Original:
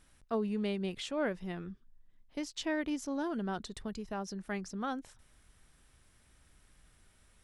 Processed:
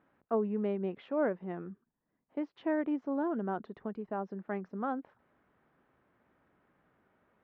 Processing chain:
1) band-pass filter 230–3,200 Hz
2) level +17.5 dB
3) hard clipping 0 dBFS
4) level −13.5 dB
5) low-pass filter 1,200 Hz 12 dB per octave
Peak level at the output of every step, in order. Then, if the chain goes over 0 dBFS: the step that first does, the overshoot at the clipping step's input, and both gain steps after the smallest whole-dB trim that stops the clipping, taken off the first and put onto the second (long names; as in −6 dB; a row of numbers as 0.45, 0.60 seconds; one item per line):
−22.0, −4.5, −4.5, −18.0, −19.0 dBFS
no step passes full scale